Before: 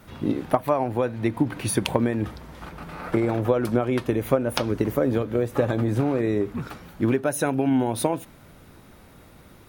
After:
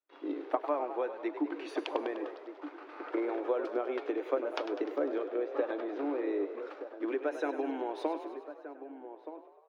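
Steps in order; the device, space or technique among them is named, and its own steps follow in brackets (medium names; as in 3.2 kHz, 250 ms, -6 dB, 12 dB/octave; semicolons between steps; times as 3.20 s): 5.28–6.51 s: low-pass 5.9 kHz 24 dB/octave; gate -41 dBFS, range -35 dB; Chebyshev high-pass 290 Hz, order 6; shout across a valley (distance through air 190 m; echo from a far wall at 210 m, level -11 dB); frequency-shifting echo 100 ms, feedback 61%, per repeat +43 Hz, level -11 dB; trim -8 dB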